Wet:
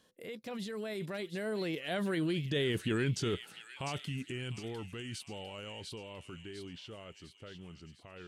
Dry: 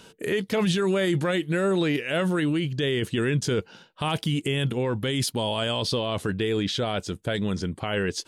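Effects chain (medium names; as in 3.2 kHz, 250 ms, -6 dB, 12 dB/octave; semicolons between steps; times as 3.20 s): Doppler pass-by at 2.69 s, 40 m/s, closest 28 m; feedback echo behind a high-pass 702 ms, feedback 48%, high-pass 2.4 kHz, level -6.5 dB; trim -6.5 dB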